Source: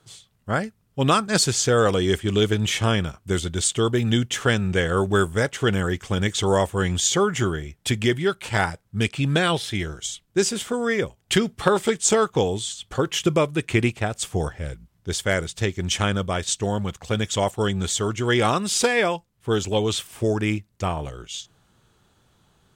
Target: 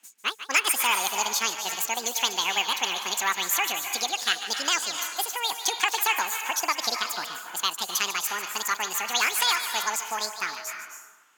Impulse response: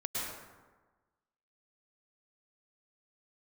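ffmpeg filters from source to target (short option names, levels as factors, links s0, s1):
-filter_complex "[0:a]highpass=170,acrossover=split=580 7200:gain=0.178 1 0.141[s0][s1][s2];[s0][s1][s2]amix=inputs=3:normalize=0,asetrate=88200,aresample=44100,asplit=2[s3][s4];[s4]lowshelf=f=430:g=-11.5[s5];[1:a]atrim=start_sample=2205,adelay=146[s6];[s5][s6]afir=irnorm=-1:irlink=0,volume=0.376[s7];[s3][s7]amix=inputs=2:normalize=0"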